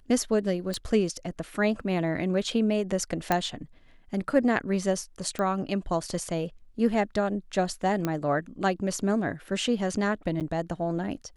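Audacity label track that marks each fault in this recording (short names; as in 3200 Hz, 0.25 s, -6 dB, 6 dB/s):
0.740000	0.740000	pop -18 dBFS
3.320000	3.320000	pop -10 dBFS
5.390000	5.390000	pop -18 dBFS
8.050000	8.050000	pop -14 dBFS
10.400000	10.410000	gap 8.1 ms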